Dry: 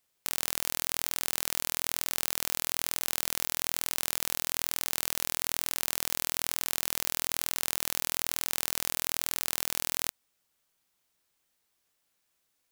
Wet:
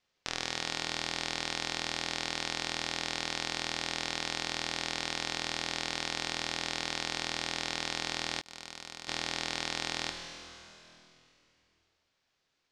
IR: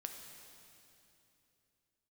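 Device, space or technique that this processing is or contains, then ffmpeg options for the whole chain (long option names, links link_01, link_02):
stairwell: -filter_complex "[1:a]atrim=start_sample=2205[link_01];[0:a][link_01]afir=irnorm=-1:irlink=0,lowpass=frequency=5500:width=0.5412,lowpass=frequency=5500:width=1.3066,asettb=1/sr,asplit=3[link_02][link_03][link_04];[link_02]atrim=end=8.414[link_05];[link_03]atrim=start=8.41:end=9.08,asetpts=PTS-STARTPTS,afade=type=in:duration=0.004:curve=qsin,afade=type=out:start_time=0.666:duration=0.004:curve=qsin,agate=range=-39dB:threshold=-41dB:ratio=16:detection=peak[link_06];[link_04]atrim=start=9.076[link_07];[link_05][link_06]acrossfade=duration=0.004:curve1=hsin:curve2=qsin[link_08];[link_08][link_07]acrossfade=duration=0.004:curve1=qsin:curve2=hsin,volume=6dB"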